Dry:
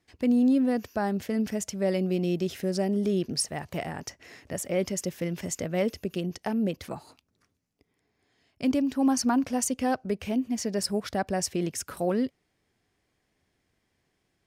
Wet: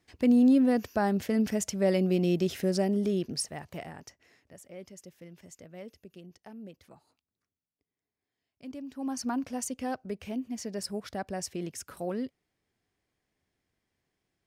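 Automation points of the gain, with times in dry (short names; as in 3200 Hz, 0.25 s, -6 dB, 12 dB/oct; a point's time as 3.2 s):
2.68 s +1 dB
3.92 s -8.5 dB
4.55 s -18 dB
8.64 s -18 dB
9.29 s -7 dB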